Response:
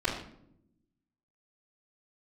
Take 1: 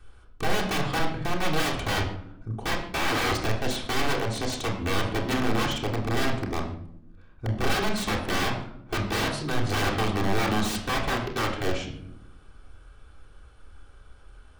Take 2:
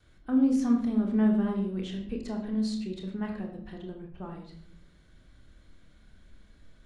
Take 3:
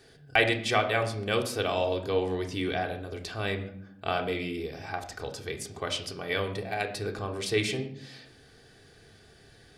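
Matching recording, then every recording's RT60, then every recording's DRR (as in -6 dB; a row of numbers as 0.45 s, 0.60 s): 2; 0.70 s, 0.70 s, no single decay rate; -7.5 dB, -16.0 dB, 2.0 dB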